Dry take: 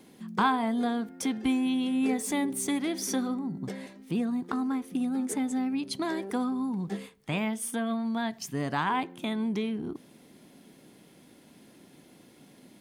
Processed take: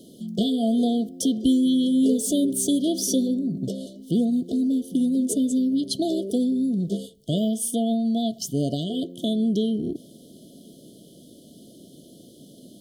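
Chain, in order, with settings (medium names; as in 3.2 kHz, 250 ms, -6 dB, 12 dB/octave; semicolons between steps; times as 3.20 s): brick-wall FIR band-stop 710–2900 Hz; trim +7.5 dB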